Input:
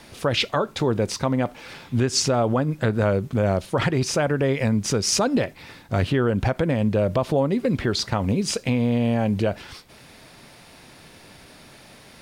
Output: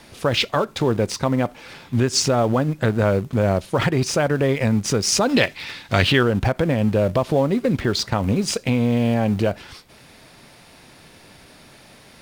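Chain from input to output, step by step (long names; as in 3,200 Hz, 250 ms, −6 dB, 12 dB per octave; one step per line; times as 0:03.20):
0:05.29–0:06.23: parametric band 3,300 Hz +13 dB 2.6 octaves
in parallel at −10.5 dB: centre clipping without the shift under −25 dBFS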